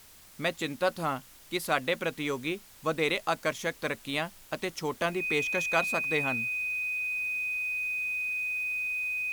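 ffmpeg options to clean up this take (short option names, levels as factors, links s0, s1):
-af "bandreject=f=2500:w=30,afftdn=nr=23:nf=-53"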